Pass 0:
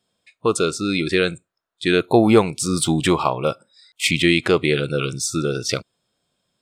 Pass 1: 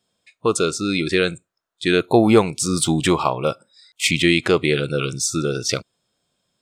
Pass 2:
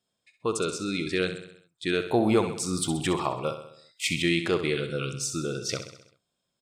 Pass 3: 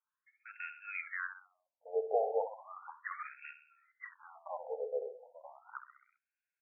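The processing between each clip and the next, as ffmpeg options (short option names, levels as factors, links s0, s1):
-af "equalizer=f=6500:t=o:w=0.57:g=3.5"
-af "aecho=1:1:65|130|195|260|325|390:0.316|0.177|0.0992|0.0555|0.0311|0.0174,volume=0.355"
-af "aeval=exprs='0.316*(cos(1*acos(clip(val(0)/0.316,-1,1)))-cos(1*PI/2))+0.0141*(cos(8*acos(clip(val(0)/0.316,-1,1)))-cos(8*PI/2))':c=same,highpass=140,lowpass=3100,afftfilt=real='re*between(b*sr/1024,580*pow(2000/580,0.5+0.5*sin(2*PI*0.35*pts/sr))/1.41,580*pow(2000/580,0.5+0.5*sin(2*PI*0.35*pts/sr))*1.41)':imag='im*between(b*sr/1024,580*pow(2000/580,0.5+0.5*sin(2*PI*0.35*pts/sr))/1.41,580*pow(2000/580,0.5+0.5*sin(2*PI*0.35*pts/sr))*1.41)':win_size=1024:overlap=0.75,volume=0.75"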